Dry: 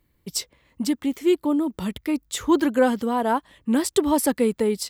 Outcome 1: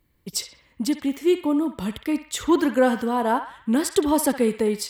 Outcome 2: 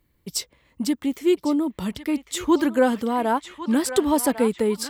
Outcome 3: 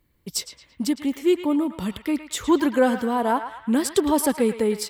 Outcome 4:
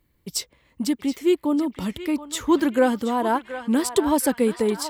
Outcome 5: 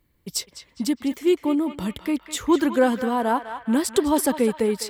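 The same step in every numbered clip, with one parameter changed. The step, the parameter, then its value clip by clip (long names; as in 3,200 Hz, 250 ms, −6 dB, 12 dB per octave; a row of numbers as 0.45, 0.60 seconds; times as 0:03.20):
feedback echo with a band-pass in the loop, delay time: 63, 1,101, 111, 725, 204 milliseconds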